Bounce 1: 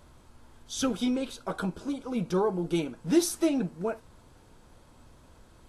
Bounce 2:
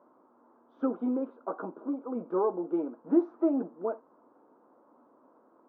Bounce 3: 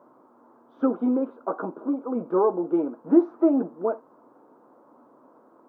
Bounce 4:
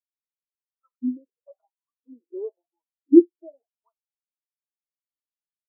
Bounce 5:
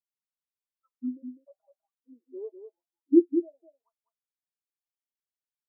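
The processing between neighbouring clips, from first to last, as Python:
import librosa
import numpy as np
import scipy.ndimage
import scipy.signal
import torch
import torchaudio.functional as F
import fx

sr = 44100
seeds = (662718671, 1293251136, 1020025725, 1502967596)

y1 = scipy.signal.sosfilt(scipy.signal.ellip(3, 1.0, 80, [260.0, 1200.0], 'bandpass', fs=sr, output='sos'), x)
y2 = fx.peak_eq(y1, sr, hz=140.0, db=9.0, octaves=0.23)
y2 = y2 * librosa.db_to_amplitude(6.5)
y3 = fx.filter_lfo_highpass(y2, sr, shape='saw_up', hz=0.98, low_hz=240.0, high_hz=1500.0, q=4.3)
y3 = fx.spectral_expand(y3, sr, expansion=2.5)
y3 = y3 * librosa.db_to_amplitude(-4.5)
y4 = y3 + 10.0 ** (-8.0 / 20.0) * np.pad(y3, (int(201 * sr / 1000.0), 0))[:len(y3)]
y4 = y4 * librosa.db_to_amplitude(-6.5)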